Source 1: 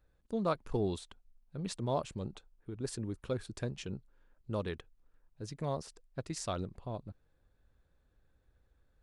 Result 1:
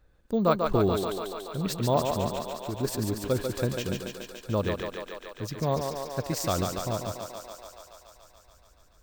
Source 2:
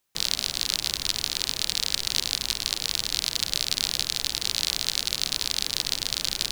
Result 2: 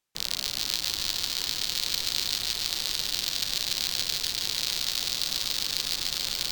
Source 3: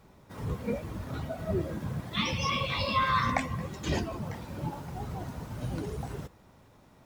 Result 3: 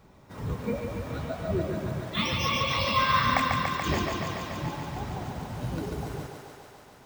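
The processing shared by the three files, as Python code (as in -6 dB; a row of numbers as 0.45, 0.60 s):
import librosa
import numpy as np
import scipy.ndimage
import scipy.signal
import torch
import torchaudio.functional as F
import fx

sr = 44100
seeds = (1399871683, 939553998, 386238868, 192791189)

y = fx.echo_thinned(x, sr, ms=143, feedback_pct=80, hz=270.0, wet_db=-4.0)
y = np.repeat(scipy.signal.resample_poly(y, 1, 2), 2)[:len(y)]
y = y * 10.0 ** (-30 / 20.0) / np.sqrt(np.mean(np.square(y)))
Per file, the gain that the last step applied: +8.5, -4.5, +1.5 dB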